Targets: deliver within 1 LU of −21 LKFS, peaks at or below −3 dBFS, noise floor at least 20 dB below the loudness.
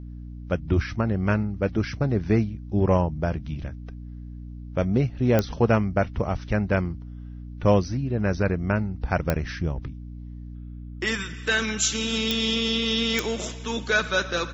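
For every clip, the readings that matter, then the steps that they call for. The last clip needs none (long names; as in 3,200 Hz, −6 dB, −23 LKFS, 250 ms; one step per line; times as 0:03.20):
number of clicks 4; mains hum 60 Hz; hum harmonics up to 300 Hz; level of the hum −35 dBFS; integrated loudness −25.0 LKFS; sample peak −6.5 dBFS; target loudness −21.0 LKFS
→ click removal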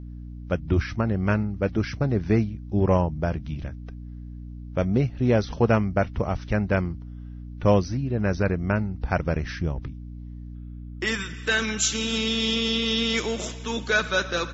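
number of clicks 0; mains hum 60 Hz; hum harmonics up to 300 Hz; level of the hum −35 dBFS
→ hum removal 60 Hz, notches 5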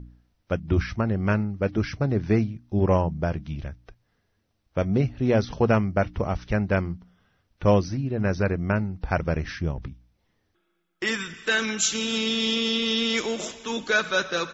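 mains hum none found; integrated loudness −25.0 LKFS; sample peak −8.0 dBFS; target loudness −21.0 LKFS
→ level +4 dB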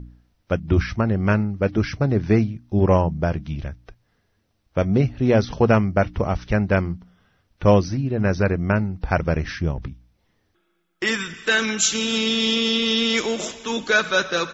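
integrated loudness −21.0 LKFS; sample peak −4.0 dBFS; background noise floor −68 dBFS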